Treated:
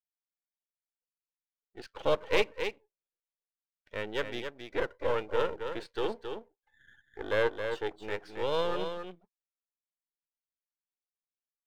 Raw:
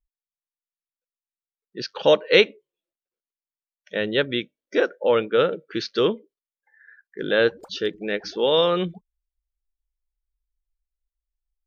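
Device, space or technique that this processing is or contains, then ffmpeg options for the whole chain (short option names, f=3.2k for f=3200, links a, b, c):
crystal radio: -filter_complex "[0:a]highpass=310,lowpass=2.6k,aeval=exprs='if(lt(val(0),0),0.251*val(0),val(0))':c=same,asettb=1/sr,asplit=3[a][b][c];[a]atrim=end=6.104[d];[b]atrim=start=6.1:end=7.96,asetpts=PTS-STARTPTS,afade=t=in:d=0.004:c=qsin,afade=t=out:st=1.856:d=0.004:c=qsin,equalizer=f=740:t=o:w=1.5:g=5[e];[c]atrim=start=7.956[f];[d][e]acrossfade=d=0.004:c1=hsin:c2=qsin[g];[g][f]acrossfade=d=0.004:c1=qsin:c2=hsin,aecho=1:1:270:0.447,volume=-7dB"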